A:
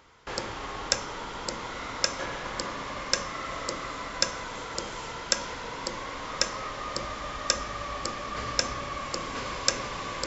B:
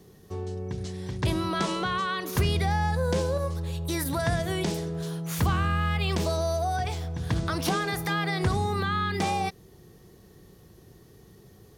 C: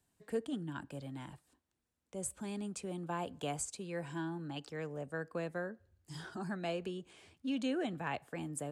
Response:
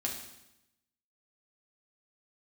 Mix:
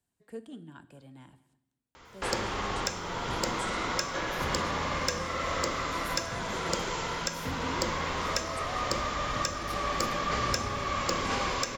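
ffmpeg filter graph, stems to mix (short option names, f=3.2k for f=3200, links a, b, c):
-filter_complex "[0:a]alimiter=limit=-12dB:level=0:latency=1:release=452,asoftclip=type=tanh:threshold=-19dB,adelay=1950,volume=2.5dB,asplit=2[a][b];[b]volume=-13dB[c];[1:a]acrusher=bits=8:mix=0:aa=0.000001,adelay=2050,volume=-16dB,asplit=2[d][e];[e]volume=-11dB[f];[2:a]volume=-8dB,asplit=3[g][h][i];[h]volume=-11dB[j];[i]volume=-20dB[k];[3:a]atrim=start_sample=2205[l];[c][f][j]amix=inputs=3:normalize=0[m];[m][l]afir=irnorm=-1:irlink=0[n];[k]aecho=0:1:208:1[o];[a][d][g][n][o]amix=inputs=5:normalize=0"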